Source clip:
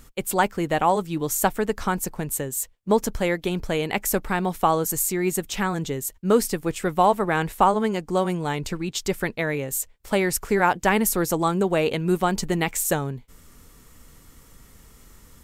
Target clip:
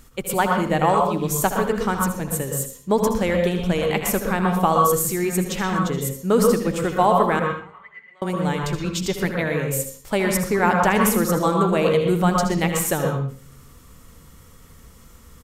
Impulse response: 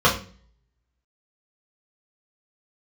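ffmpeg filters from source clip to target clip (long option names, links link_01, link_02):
-filter_complex "[0:a]asettb=1/sr,asplit=3[link_01][link_02][link_03];[link_01]atrim=end=7.394[link_04];[link_02]atrim=start=7.39:end=8.22,asetpts=PTS-STARTPTS,afade=type=in:duration=0.004:curve=qsin,afade=type=out:start_time=0.826:duration=0.004:curve=qsin,bandpass=frequency=2000:width_type=q:width=20:csg=0[link_05];[link_03]atrim=start=8.216[link_06];[link_04][link_05]acrossfade=duration=0.004:curve1=hsin:curve2=qsin[link_07];[link_07][link_06]acrossfade=duration=0.004:curve1=qsin:curve2=hsin,aecho=1:1:67|79:0.178|0.282,asplit=2[link_08][link_09];[1:a]atrim=start_sample=2205,adelay=112[link_10];[link_09][link_10]afir=irnorm=-1:irlink=0,volume=-22.5dB[link_11];[link_08][link_11]amix=inputs=2:normalize=0"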